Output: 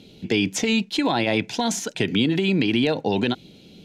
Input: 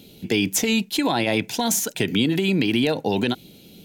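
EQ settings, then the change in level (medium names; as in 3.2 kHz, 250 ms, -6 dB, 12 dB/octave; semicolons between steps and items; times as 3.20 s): low-pass 5.6 kHz 12 dB/octave; 0.0 dB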